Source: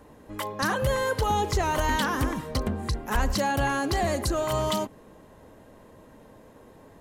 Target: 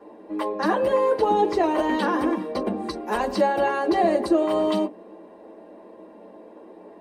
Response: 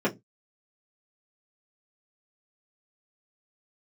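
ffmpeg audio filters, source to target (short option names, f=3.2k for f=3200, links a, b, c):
-filter_complex "[1:a]atrim=start_sample=2205,asetrate=70560,aresample=44100[a];[0:a][a]afir=irnorm=-1:irlink=0,asettb=1/sr,asplit=3[b][c][d];[b]atrim=end=2.634[e];[c]atrim=start=2.63:end=3.36,asetpts=PTS-STARTPTS,afade=t=in:d=0.004:c=qsin,afade=t=out:st=0.726:d=0.004:c=qsin,adynamicequalizer=threshold=0.0126:dfrequency=3500:dqfactor=0.7:tfrequency=3500:tqfactor=0.7:attack=5:release=100:ratio=0.375:range=3.5:mode=boostabove:tftype=highshelf[f];[d]atrim=start=3.356[g];[e][f]acrossfade=d=0.004:c1=hsin:c2=qsin[h];[h][g]acrossfade=d=0.004:c1=qsin:c2=hsin,volume=-7.5dB"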